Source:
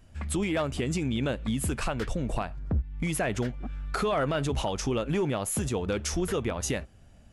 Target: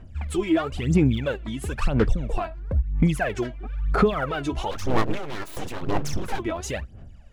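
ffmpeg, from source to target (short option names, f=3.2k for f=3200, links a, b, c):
-filter_complex "[0:a]aemphasis=mode=reproduction:type=50kf,aphaser=in_gain=1:out_gain=1:delay=3.1:decay=0.76:speed=1:type=sinusoidal,asplit=3[a][b][c];[a]afade=t=out:st=4.7:d=0.02[d];[b]aeval=exprs='abs(val(0))':c=same,afade=t=in:st=4.7:d=0.02,afade=t=out:st=6.38:d=0.02[e];[c]afade=t=in:st=6.38:d=0.02[f];[d][e][f]amix=inputs=3:normalize=0"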